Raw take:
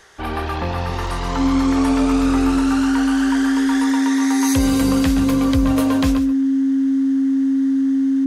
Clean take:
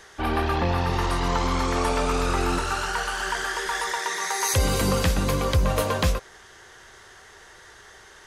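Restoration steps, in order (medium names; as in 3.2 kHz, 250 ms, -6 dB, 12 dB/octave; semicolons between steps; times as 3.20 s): band-stop 270 Hz, Q 30; interpolate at 1.07/5.30 s, 1.3 ms; inverse comb 139 ms -11.5 dB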